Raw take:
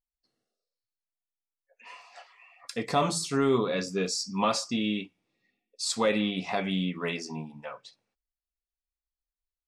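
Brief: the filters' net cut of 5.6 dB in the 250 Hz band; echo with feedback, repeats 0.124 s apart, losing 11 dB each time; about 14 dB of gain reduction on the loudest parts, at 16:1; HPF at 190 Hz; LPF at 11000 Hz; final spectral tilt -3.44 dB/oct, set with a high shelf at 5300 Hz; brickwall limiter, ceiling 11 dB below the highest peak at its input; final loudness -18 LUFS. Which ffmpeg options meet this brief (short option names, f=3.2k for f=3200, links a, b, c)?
-af "highpass=190,lowpass=11k,equalizer=f=250:t=o:g=-5,highshelf=f=5.3k:g=-8.5,acompressor=threshold=-35dB:ratio=16,alimiter=level_in=9dB:limit=-24dB:level=0:latency=1,volume=-9dB,aecho=1:1:124|248|372:0.282|0.0789|0.0221,volume=25dB"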